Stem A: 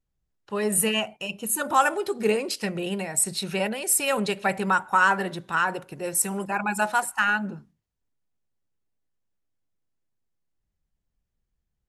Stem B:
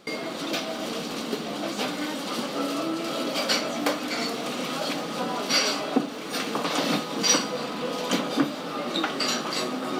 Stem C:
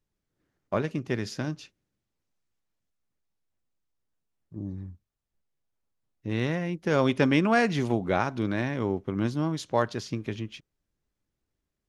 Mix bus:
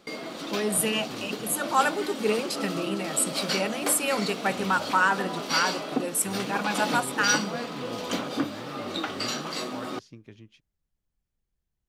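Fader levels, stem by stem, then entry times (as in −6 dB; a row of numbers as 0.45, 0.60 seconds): −2.5, −4.5, −15.0 decibels; 0.00, 0.00, 0.00 seconds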